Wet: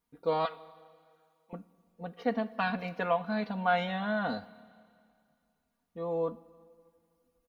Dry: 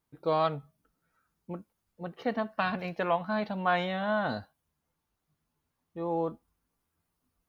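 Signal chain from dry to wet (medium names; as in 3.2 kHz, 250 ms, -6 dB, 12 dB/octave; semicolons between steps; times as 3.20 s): 0.45–1.53 s: high-pass 1 kHz 12 dB/octave; comb 4.2 ms, depth 67%; Schroeder reverb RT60 2.3 s, combs from 28 ms, DRR 18.5 dB; trim -3 dB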